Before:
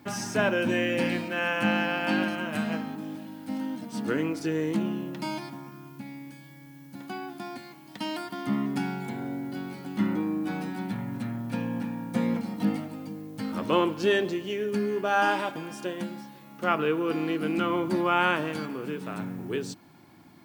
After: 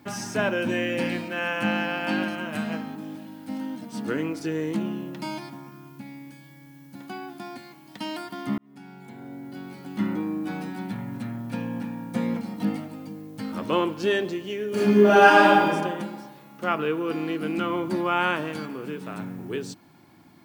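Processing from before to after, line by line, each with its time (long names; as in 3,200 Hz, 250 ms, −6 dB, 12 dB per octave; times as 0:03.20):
0:08.58–0:10.04: fade in
0:14.68–0:15.66: thrown reverb, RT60 1.4 s, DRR −10 dB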